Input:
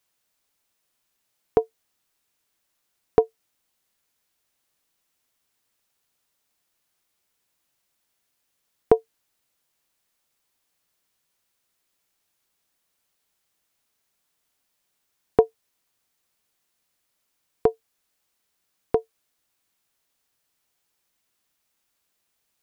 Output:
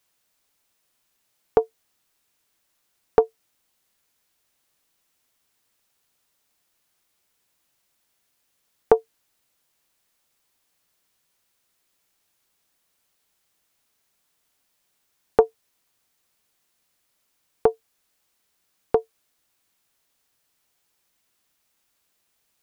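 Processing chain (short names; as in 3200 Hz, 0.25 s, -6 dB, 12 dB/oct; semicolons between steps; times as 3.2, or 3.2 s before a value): in parallel at -2.5 dB: limiter -10.5 dBFS, peak gain reduction 8.5 dB; on the sum: Doppler distortion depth 0.32 ms; gain -1.5 dB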